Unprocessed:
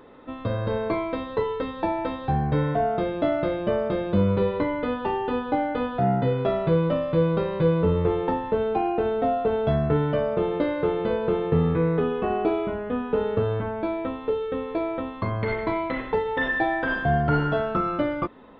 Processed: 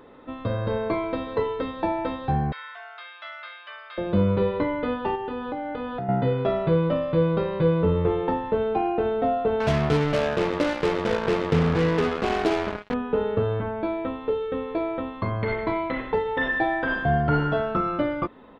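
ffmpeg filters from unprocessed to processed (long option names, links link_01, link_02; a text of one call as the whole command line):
ffmpeg -i in.wav -filter_complex "[0:a]asplit=2[link_01][link_02];[link_02]afade=type=in:start_time=0.8:duration=0.01,afade=type=out:start_time=1.25:duration=0.01,aecho=0:1:230|460|690|920|1150:0.223872|0.111936|0.055968|0.027984|0.013992[link_03];[link_01][link_03]amix=inputs=2:normalize=0,asettb=1/sr,asplit=3[link_04][link_05][link_06];[link_04]atrim=end=2.524[link_07];[link_05]atrim=start=2.52:end=3.98,asetpts=PTS-STARTPTS,afade=type=in:duration=0.004:curve=qsin,afade=type=out:start_time=1.456:duration=0.004:curve=qsin,highpass=frequency=1300:width=0.5412,highpass=frequency=1300:width=1.3066[link_08];[link_06]atrim=start=3.976[link_09];[link_07][link_08]acrossfade=duration=0.004:curve1=hsin:curve2=qsin[link_10];[link_10][link_09]acrossfade=duration=0.004:curve1=qsin:curve2=hsin,asettb=1/sr,asplit=3[link_11][link_12][link_13];[link_11]atrim=end=5.154[link_14];[link_12]atrim=start=5.15:end=6.09,asetpts=PTS-STARTPTS,afade=type=in:duration=0.004:curve=qsin,afade=type=out:start_time=0.936:duration=0.004:curve=qsin,acompressor=threshold=-27dB:ratio=6:attack=3.2:release=140:knee=1:detection=peak[link_15];[link_13]atrim=start=6.086[link_16];[link_14][link_15]acrossfade=duration=0.004:curve1=hsin:curve2=qsin[link_17];[link_17][link_16]acrossfade=duration=0.004:curve1=qsin:curve2=hsin,asettb=1/sr,asplit=3[link_18][link_19][link_20];[link_18]atrim=end=9.604[link_21];[link_19]atrim=start=9.6:end=12.94,asetpts=PTS-STARTPTS,afade=type=in:duration=0.004:curve=qsin,afade=type=out:start_time=3.336:duration=0.004:curve=qsin,acrusher=bits=3:mix=0:aa=0.5[link_22];[link_20]atrim=start=12.936[link_23];[link_21][link_22]acrossfade=duration=0.004:curve1=hsin:curve2=qsin[link_24];[link_24][link_23]acrossfade=duration=0.004:curve1=qsin:curve2=hsin" out.wav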